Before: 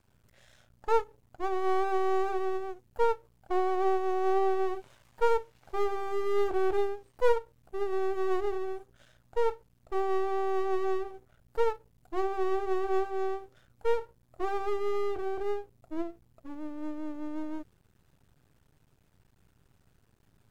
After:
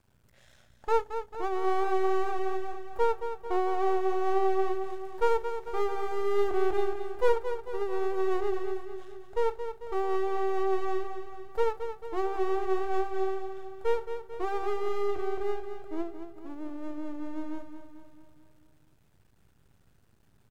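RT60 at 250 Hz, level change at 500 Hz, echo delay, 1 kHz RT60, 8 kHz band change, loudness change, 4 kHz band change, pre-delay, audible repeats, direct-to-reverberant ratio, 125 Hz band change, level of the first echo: no reverb, +0.5 dB, 222 ms, no reverb, no reading, +0.5 dB, +1.0 dB, no reverb, 6, no reverb, no reading, -9.0 dB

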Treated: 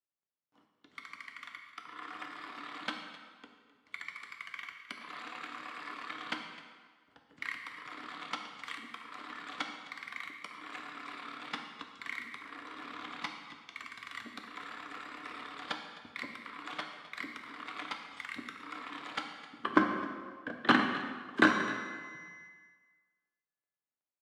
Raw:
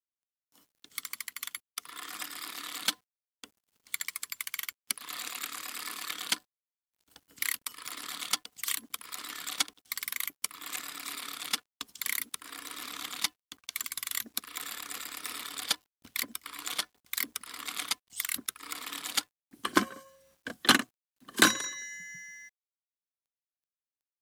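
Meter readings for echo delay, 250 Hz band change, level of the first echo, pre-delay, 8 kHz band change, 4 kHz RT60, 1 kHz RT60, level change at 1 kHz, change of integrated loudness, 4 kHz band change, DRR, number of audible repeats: 259 ms, +2.5 dB, -17.0 dB, 3 ms, -24.0 dB, 1.3 s, 1.6 s, +1.0 dB, -4.5 dB, -10.5 dB, 2.5 dB, 1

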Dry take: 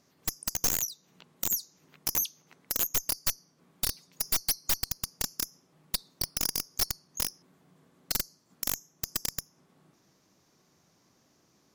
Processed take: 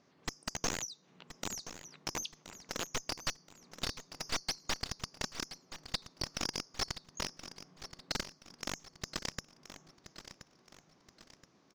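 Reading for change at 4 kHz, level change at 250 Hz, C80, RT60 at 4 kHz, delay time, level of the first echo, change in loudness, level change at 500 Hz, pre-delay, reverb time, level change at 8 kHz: -4.0 dB, 0.0 dB, no reverb, no reverb, 1025 ms, -12.5 dB, -9.0 dB, +1.0 dB, no reverb, no reverb, -9.5 dB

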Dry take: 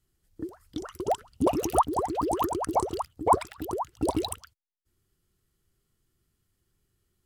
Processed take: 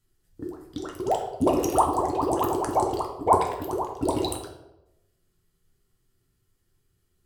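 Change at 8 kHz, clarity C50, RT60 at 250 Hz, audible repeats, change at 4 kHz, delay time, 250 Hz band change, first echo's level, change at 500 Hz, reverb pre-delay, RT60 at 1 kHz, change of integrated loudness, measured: +1.5 dB, 6.5 dB, 1.0 s, no echo, +2.0 dB, no echo, +2.5 dB, no echo, +3.5 dB, 7 ms, 0.85 s, +3.0 dB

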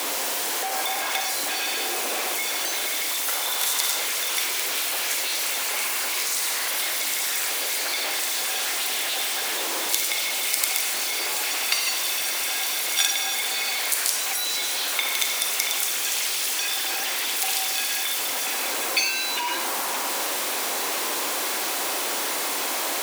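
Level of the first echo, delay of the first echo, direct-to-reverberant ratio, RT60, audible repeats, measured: no echo, no echo, 4.5 dB, 0.85 s, no echo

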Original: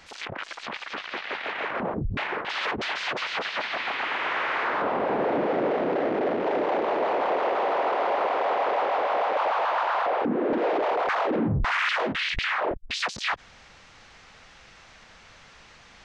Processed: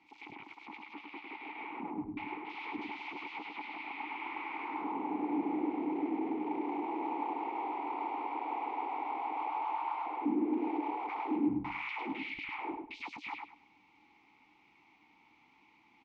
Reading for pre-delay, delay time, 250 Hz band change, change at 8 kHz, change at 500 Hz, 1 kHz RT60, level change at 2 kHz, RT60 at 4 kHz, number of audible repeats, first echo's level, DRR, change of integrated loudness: no reverb, 102 ms, -3.5 dB, no reading, -18.0 dB, no reverb, -15.0 dB, no reverb, 3, -4.5 dB, no reverb, -11.0 dB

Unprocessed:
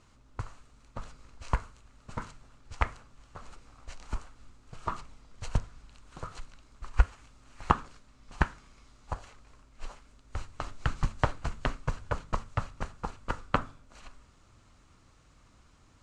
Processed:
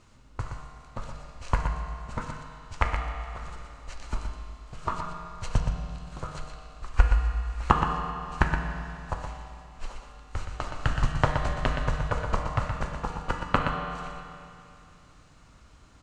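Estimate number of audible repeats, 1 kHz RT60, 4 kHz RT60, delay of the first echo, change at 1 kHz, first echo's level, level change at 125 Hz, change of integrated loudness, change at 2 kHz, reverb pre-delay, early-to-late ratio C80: 1, 2.6 s, 2.6 s, 121 ms, +5.5 dB, -7.0 dB, +6.0 dB, +4.5 dB, +5.5 dB, 7 ms, 3.0 dB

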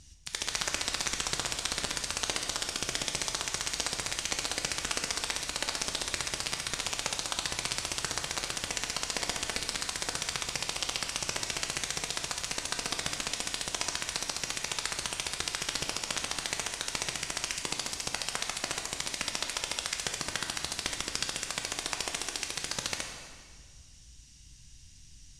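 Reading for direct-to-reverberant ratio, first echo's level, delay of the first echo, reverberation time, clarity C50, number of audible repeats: 2.5 dB, no echo, no echo, 1.8 s, 4.5 dB, no echo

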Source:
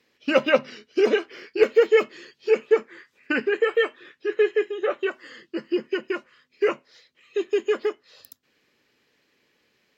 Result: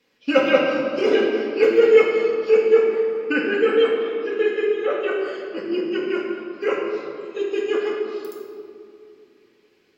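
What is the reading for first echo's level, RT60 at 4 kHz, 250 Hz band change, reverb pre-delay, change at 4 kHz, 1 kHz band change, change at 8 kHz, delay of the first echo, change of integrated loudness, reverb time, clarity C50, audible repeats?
no echo, 1.3 s, +5.5 dB, 4 ms, +3.0 dB, +3.5 dB, no reading, no echo, +3.5 dB, 2.6 s, 0.5 dB, no echo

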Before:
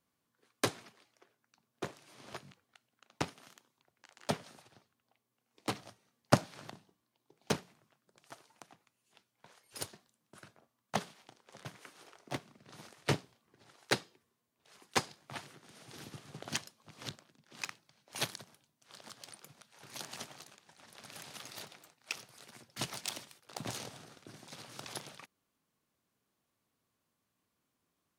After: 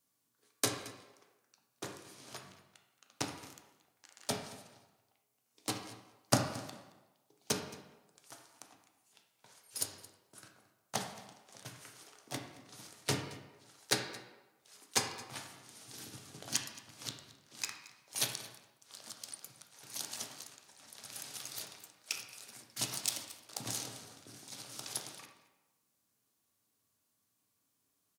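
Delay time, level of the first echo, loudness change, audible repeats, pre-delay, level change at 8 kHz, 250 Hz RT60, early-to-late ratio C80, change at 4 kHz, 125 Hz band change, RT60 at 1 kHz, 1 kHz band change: 222 ms, -19.5 dB, +0.5 dB, 1, 4 ms, +7.0 dB, 1.0 s, 8.0 dB, +2.5 dB, -2.5 dB, 1.1 s, -2.5 dB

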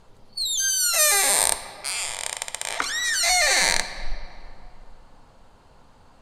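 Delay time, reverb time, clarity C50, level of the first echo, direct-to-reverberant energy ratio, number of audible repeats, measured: no echo, 2.7 s, 11.0 dB, no echo, 9.0 dB, no echo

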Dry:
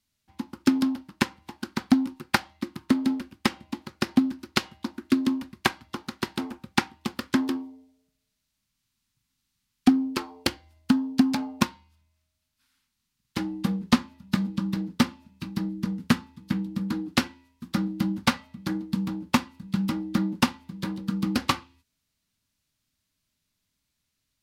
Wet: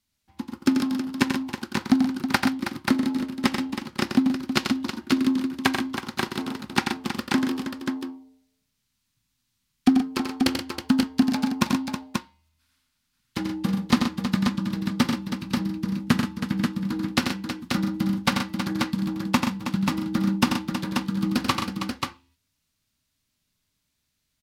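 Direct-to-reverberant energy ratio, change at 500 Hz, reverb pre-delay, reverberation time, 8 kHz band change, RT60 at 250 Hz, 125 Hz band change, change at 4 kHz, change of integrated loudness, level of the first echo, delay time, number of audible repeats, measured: no reverb, +2.5 dB, no reverb, no reverb, +2.5 dB, no reverb, +2.5 dB, +2.5 dB, +2.0 dB, -6.5 dB, 88 ms, 4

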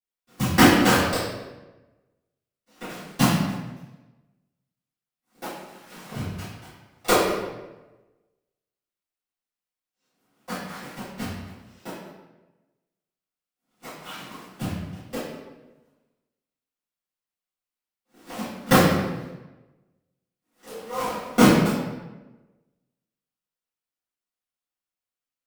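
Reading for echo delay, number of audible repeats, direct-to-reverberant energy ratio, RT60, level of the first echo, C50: no echo, no echo, -17.5 dB, 1.1 s, no echo, 0.0 dB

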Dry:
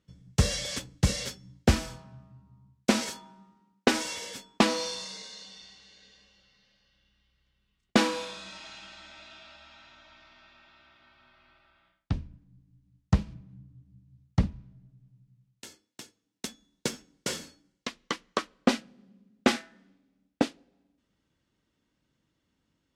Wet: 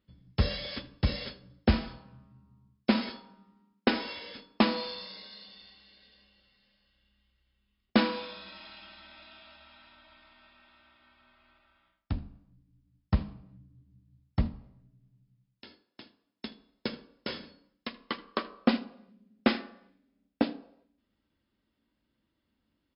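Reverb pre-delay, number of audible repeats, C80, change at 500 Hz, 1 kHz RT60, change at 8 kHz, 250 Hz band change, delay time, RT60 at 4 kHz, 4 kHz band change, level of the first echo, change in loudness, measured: 3 ms, 1, 19.5 dB, -3.0 dB, 0.70 s, under -40 dB, -0.5 dB, 78 ms, 0.70 s, -3.5 dB, -20.5 dB, -2.0 dB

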